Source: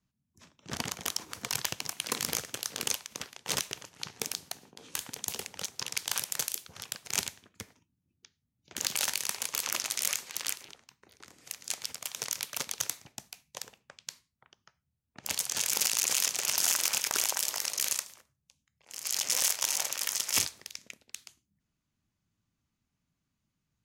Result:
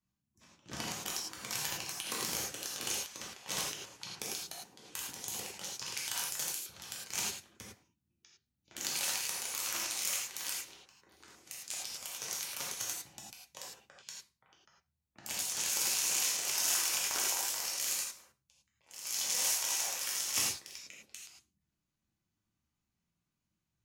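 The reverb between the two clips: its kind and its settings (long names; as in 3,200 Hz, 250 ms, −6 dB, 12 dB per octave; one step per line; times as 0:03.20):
reverb whose tail is shaped and stops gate 130 ms flat, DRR −4.5 dB
level −9 dB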